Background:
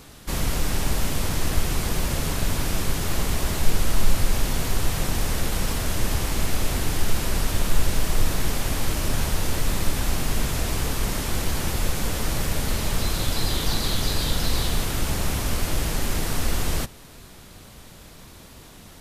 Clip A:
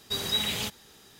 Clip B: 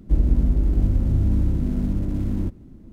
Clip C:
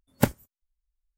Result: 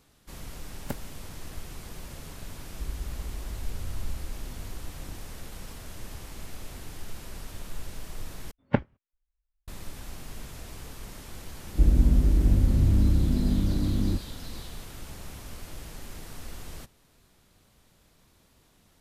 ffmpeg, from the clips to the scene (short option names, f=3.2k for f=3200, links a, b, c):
-filter_complex "[3:a]asplit=2[a][b];[2:a]asplit=2[c][d];[0:a]volume=-17dB[e];[c]equalizer=f=200:w=0.79:g=-11.5[f];[b]lowpass=f=2.8k:w=0.5412,lowpass=f=2.8k:w=1.3066[g];[e]asplit=2[h][i];[h]atrim=end=8.514[j];[g]atrim=end=1.17,asetpts=PTS-STARTPTS,volume=-2dB[k];[i]atrim=start=9.676[l];[a]atrim=end=1.17,asetpts=PTS-STARTPTS,volume=-14dB,afade=t=in:d=0.004:c=hsin,afade=t=out:st=1.166:d=0.004:c=hsin,adelay=670[m];[f]atrim=end=2.92,asetpts=PTS-STARTPTS,volume=-16dB,afade=t=in:d=0.004:c=hsin,afade=t=out:st=2.916:d=0.004:c=hsin,adelay=2690[n];[d]atrim=end=2.92,asetpts=PTS-STARTPTS,volume=-1.5dB,afade=t=in:d=0.004:c=hsin,afade=t=out:st=2.916:d=0.004:c=hsin,adelay=11680[o];[j][k]acrossfade=d=0.004:c1=hsin:c2=hsin[p];[p][l]acrossfade=d=0.004:c1=hsin:c2=hsin[q];[q][m][n][o]amix=inputs=4:normalize=0"